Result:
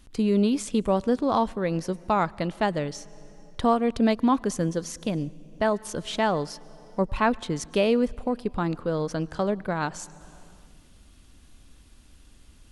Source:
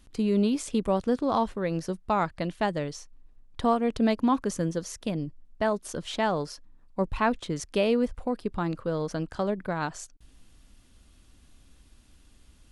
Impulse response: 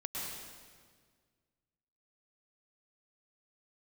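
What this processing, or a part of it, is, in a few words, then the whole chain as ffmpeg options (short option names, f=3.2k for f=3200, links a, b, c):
compressed reverb return: -filter_complex "[0:a]asplit=2[a][b];[1:a]atrim=start_sample=2205[c];[b][c]afir=irnorm=-1:irlink=0,acompressor=threshold=-34dB:ratio=12,volume=-12dB[d];[a][d]amix=inputs=2:normalize=0,volume=2dB"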